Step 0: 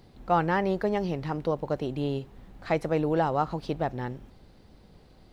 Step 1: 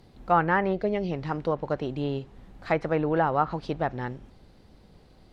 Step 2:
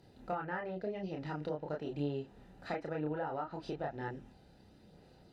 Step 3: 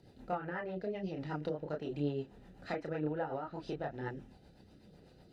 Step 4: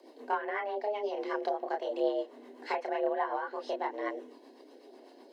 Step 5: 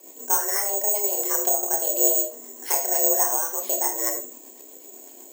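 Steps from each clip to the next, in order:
treble ducked by the level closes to 2600 Hz, closed at -20.5 dBFS; spectral gain 0.73–1.11, 780–2000 Hz -11 dB; dynamic EQ 1500 Hz, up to +6 dB, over -41 dBFS, Q 1.1
compressor 6:1, threshold -30 dBFS, peak gain reduction 13 dB; chorus voices 2, 0.49 Hz, delay 30 ms, depth 3.6 ms; notch comb 1100 Hz; gain -1 dB
rotary speaker horn 8 Hz; gain +2.5 dB
frequency shift +210 Hz; gain +5 dB
careless resampling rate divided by 6×, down none, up zero stuff; on a send at -6 dB: reverb RT60 0.35 s, pre-delay 10 ms; on the sum: gain +1.5 dB

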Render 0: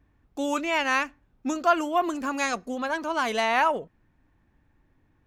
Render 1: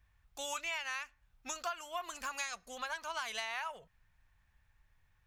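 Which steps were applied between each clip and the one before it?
passive tone stack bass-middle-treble 10-0-10; compressor 6:1, threshold -39 dBFS, peak gain reduction 14.5 dB; gain +3 dB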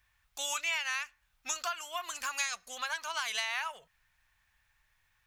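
tilt shelf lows -7.5 dB, about 730 Hz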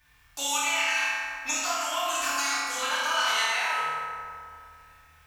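compressor 2.5:1, threshold -40 dBFS, peak gain reduction 9 dB; on a send: flutter echo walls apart 4.4 m, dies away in 0.46 s; on the sum: FDN reverb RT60 2.4 s, low-frequency decay 1.2×, high-frequency decay 0.5×, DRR -7.5 dB; gain +5 dB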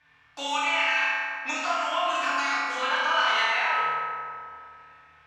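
BPF 150–2900 Hz; gain +3.5 dB

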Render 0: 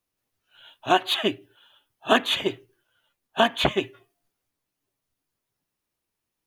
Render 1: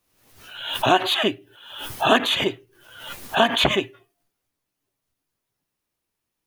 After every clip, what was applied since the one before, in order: backwards sustainer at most 66 dB/s; gain +1.5 dB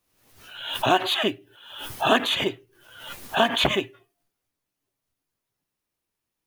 block floating point 7-bit; gain -2.5 dB

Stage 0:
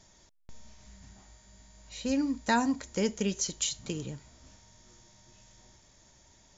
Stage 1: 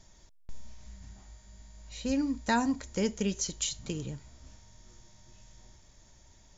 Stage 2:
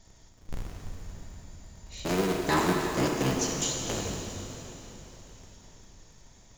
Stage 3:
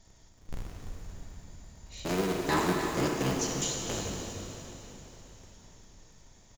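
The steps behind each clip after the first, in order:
low shelf 78 Hz +11.5 dB; gain -1.5 dB
cycle switcher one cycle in 3, inverted; plate-style reverb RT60 3.7 s, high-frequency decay 0.95×, DRR -0.5 dB
echo 0.3 s -11 dB; gain -2.5 dB

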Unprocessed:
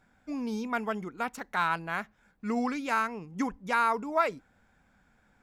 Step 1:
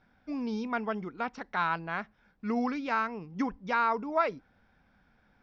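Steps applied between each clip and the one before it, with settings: Chebyshev low-pass 5600 Hz, order 5; dynamic EQ 3600 Hz, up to -3 dB, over -45 dBFS, Q 0.82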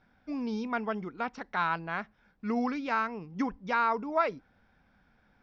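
nothing audible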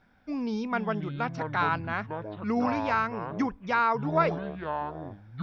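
echoes that change speed 0.304 s, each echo -7 st, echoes 2, each echo -6 dB; gain +2.5 dB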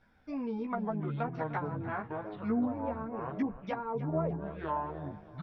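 treble ducked by the level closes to 510 Hz, closed at -23.5 dBFS; feedback echo 0.302 s, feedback 45%, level -15.5 dB; chorus voices 4, 0.66 Hz, delay 14 ms, depth 1.6 ms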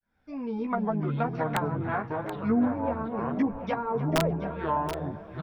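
opening faded in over 0.70 s; wrapped overs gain 21.5 dB; echo 0.729 s -11 dB; gain +6 dB

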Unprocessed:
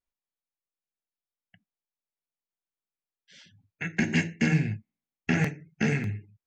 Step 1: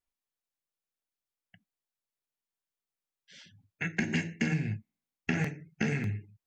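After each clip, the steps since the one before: compressor, threshold -26 dBFS, peak gain reduction 7.5 dB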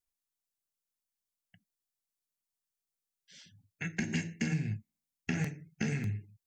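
tone controls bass +5 dB, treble +9 dB; gain -6 dB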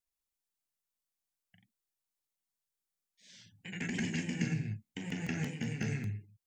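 echoes that change speed 0.127 s, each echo +1 st, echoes 2; gain -3 dB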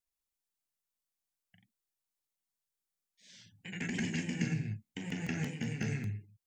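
nothing audible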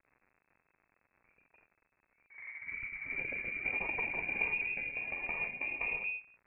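echoes that change speed 0.159 s, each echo +4 st, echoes 3; crackle 130/s -47 dBFS; inverted band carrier 2600 Hz; gain -1.5 dB

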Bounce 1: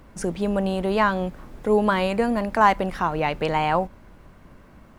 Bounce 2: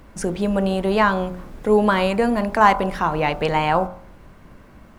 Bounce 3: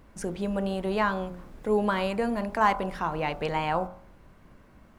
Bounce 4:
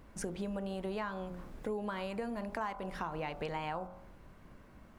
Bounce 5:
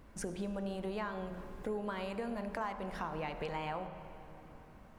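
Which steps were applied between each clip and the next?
de-hum 45.18 Hz, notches 34; gain +3.5 dB
wow and flutter 24 cents; gain -8.5 dB
compressor 6:1, threshold -33 dBFS, peak gain reduction 15 dB; gain -2 dB
digital reverb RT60 3.8 s, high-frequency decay 0.55×, pre-delay 30 ms, DRR 10 dB; gain -1 dB

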